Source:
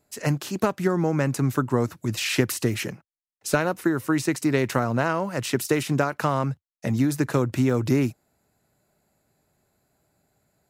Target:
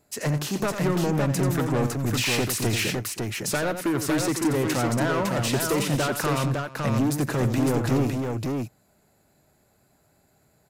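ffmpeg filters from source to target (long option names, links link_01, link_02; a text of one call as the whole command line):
ffmpeg -i in.wav -af "asoftclip=type=tanh:threshold=-24.5dB,aecho=1:1:88|317|556:0.355|0.126|0.631,volume=4dB" out.wav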